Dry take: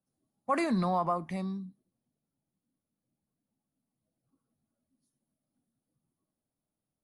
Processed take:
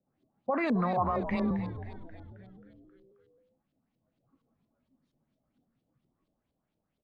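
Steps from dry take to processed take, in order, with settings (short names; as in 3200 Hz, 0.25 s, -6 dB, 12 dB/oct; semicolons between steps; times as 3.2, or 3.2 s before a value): limiter -28.5 dBFS, peak gain reduction 10.5 dB; 0.97–1.51 frequency shift +22 Hz; LFO low-pass saw up 4.3 Hz 430–4100 Hz; frequency-shifting echo 0.267 s, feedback 59%, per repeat -100 Hz, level -11.5 dB; gain +5.5 dB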